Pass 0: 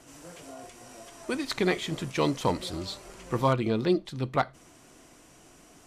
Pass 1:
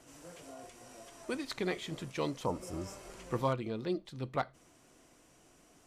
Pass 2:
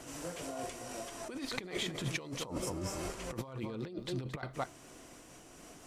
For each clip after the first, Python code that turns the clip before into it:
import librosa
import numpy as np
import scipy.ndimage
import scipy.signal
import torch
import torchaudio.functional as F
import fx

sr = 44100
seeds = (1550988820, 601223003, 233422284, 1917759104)

y1 = fx.spec_repair(x, sr, seeds[0], start_s=2.48, length_s=0.55, low_hz=1400.0, high_hz=5000.0, source='after')
y1 = fx.peak_eq(y1, sr, hz=520.0, db=2.5, octaves=0.39)
y1 = fx.rider(y1, sr, range_db=10, speed_s=0.5)
y1 = y1 * 10.0 ** (-9.0 / 20.0)
y2 = y1 + 10.0 ** (-14.0 / 20.0) * np.pad(y1, (int(221 * sr / 1000.0), 0))[:len(y1)]
y2 = fx.over_compress(y2, sr, threshold_db=-43.0, ratio=-1.0)
y2 = fx.am_noise(y2, sr, seeds[1], hz=5.7, depth_pct=55)
y2 = y2 * 10.0 ** (6.0 / 20.0)